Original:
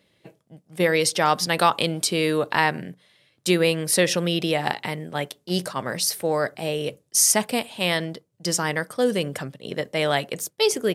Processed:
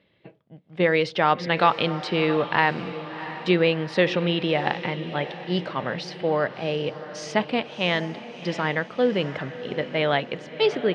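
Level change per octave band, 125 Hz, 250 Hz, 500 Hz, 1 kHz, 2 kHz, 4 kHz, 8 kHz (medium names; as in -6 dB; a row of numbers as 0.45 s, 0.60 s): +0.5 dB, 0.0 dB, 0.0 dB, +0.5 dB, 0.0 dB, -3.5 dB, -24.5 dB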